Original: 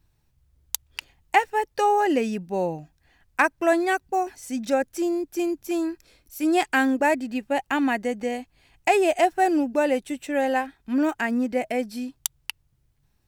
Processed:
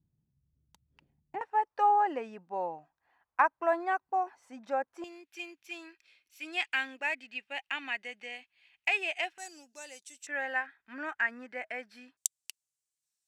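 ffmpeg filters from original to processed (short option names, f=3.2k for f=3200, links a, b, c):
-af "asetnsamples=n=441:p=0,asendcmd='1.41 bandpass f 1000;5.04 bandpass f 2600;9.38 bandpass f 6400;10.27 bandpass f 1700;12.17 bandpass f 7600',bandpass=f=180:t=q:w=2.4:csg=0"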